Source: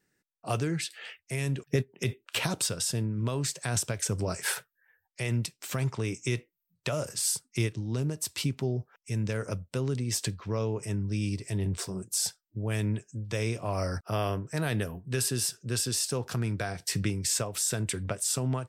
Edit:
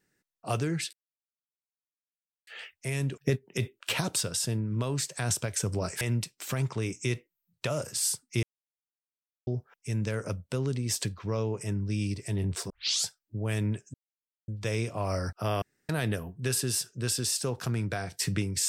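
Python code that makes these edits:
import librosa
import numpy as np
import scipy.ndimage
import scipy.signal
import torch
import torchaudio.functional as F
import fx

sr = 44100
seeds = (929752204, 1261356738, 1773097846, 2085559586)

y = fx.edit(x, sr, fx.insert_silence(at_s=0.93, length_s=1.54),
    fx.cut(start_s=4.47, length_s=0.76),
    fx.silence(start_s=7.65, length_s=1.04),
    fx.tape_start(start_s=11.92, length_s=0.36),
    fx.insert_silence(at_s=13.16, length_s=0.54),
    fx.room_tone_fill(start_s=14.3, length_s=0.27), tone=tone)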